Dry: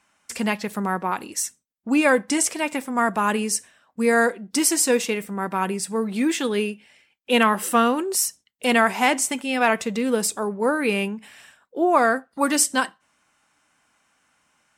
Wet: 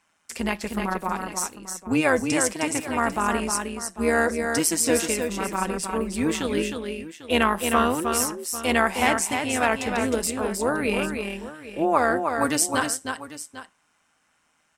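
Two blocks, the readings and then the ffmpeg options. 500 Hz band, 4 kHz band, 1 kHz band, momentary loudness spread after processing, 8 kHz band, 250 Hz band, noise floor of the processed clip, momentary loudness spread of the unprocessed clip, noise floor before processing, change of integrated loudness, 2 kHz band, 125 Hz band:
-1.5 dB, -2.0 dB, -2.0 dB, 10 LU, -2.0 dB, -2.0 dB, -68 dBFS, 9 LU, -69 dBFS, -2.0 dB, -2.0 dB, no reading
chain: -af "tremolo=f=160:d=0.667,aecho=1:1:311|797:0.531|0.178"

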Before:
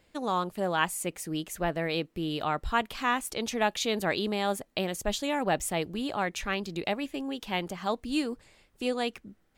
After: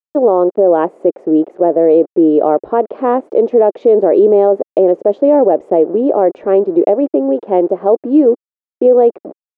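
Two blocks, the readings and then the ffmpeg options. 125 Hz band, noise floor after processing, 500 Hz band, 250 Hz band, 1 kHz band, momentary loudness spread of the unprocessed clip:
no reading, under -85 dBFS, +23.5 dB, +18.5 dB, +12.0 dB, 5 LU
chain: -af "aeval=exprs='val(0)*gte(abs(val(0)),0.00668)':c=same,asuperpass=centerf=450:order=4:qfactor=1.6,alimiter=level_in=26.6:limit=0.891:release=50:level=0:latency=1,volume=0.891"

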